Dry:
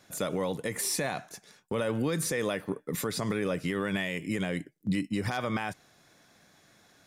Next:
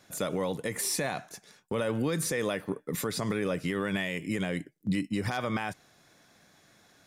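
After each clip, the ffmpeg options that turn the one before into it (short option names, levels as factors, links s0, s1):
-af anull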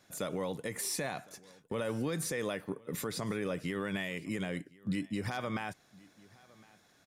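-af "aecho=1:1:1059:0.0631,volume=0.562"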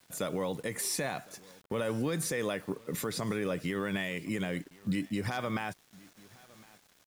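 -af "acrusher=bits=9:mix=0:aa=0.000001,volume=1.33"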